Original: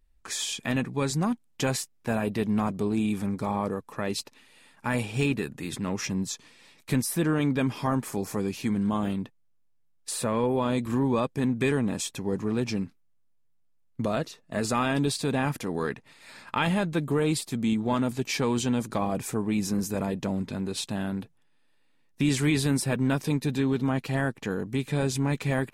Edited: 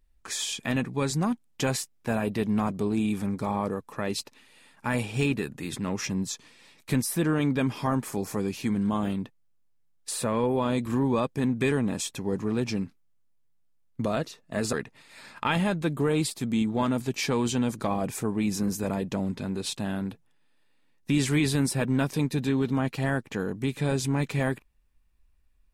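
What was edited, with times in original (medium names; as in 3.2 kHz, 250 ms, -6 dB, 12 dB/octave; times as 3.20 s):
14.73–15.84 s: delete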